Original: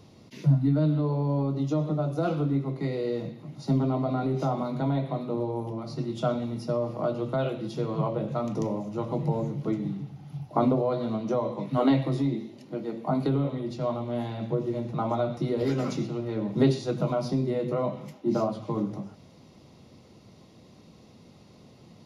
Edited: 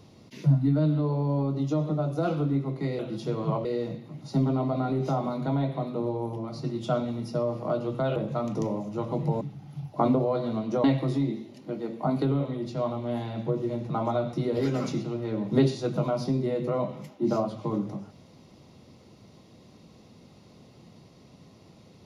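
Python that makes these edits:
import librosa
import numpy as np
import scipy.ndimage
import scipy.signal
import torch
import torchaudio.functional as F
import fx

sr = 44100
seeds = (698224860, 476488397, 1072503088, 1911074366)

y = fx.edit(x, sr, fx.move(start_s=7.5, length_s=0.66, to_s=2.99),
    fx.cut(start_s=9.41, length_s=0.57),
    fx.cut(start_s=11.41, length_s=0.47), tone=tone)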